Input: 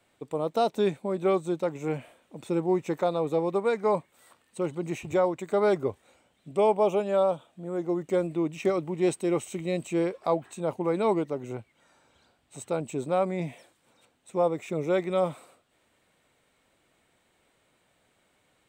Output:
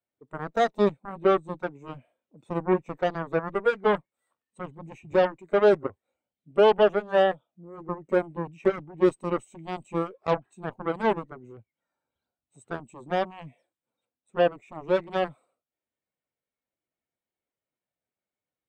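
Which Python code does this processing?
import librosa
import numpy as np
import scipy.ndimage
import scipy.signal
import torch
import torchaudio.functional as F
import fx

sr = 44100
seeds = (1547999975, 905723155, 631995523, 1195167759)

y = fx.cheby_harmonics(x, sr, harmonics=(7,), levels_db=(-11,), full_scale_db=-13.0)
y = fx.spectral_expand(y, sr, expansion=1.5)
y = y * librosa.db_to_amplitude(3.5)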